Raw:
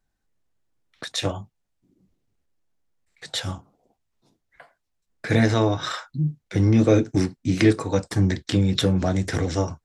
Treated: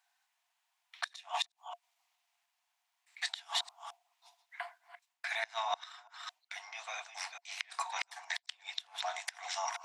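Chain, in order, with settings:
delay that plays each chunk backwards 217 ms, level −13 dB
reversed playback
downward compressor 6 to 1, threshold −31 dBFS, peak gain reduction 18 dB
reversed playback
Chebyshev high-pass with heavy ripple 680 Hz, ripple 6 dB
gate with flip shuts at −31 dBFS, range −24 dB
level +10.5 dB

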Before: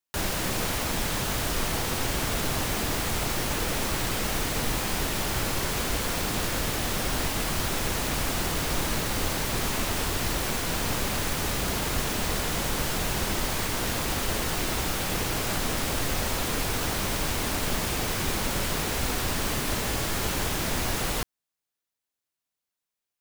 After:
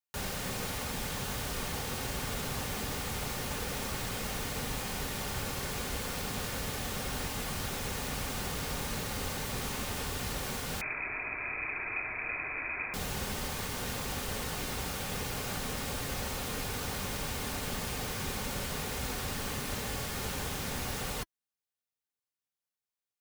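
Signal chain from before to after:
notch comb filter 330 Hz
0:10.81–0:12.94: voice inversion scrambler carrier 2,500 Hz
level −6.5 dB

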